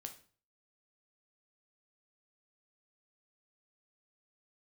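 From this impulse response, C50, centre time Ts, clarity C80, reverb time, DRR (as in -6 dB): 11.5 dB, 11 ms, 16.5 dB, 0.40 s, 5.0 dB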